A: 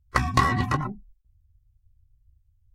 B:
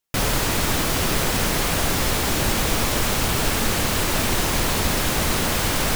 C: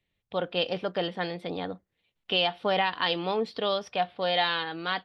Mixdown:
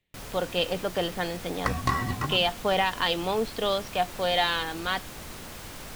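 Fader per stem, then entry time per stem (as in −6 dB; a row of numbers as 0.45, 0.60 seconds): −5.5, −19.5, +1.0 decibels; 1.50, 0.00, 0.00 seconds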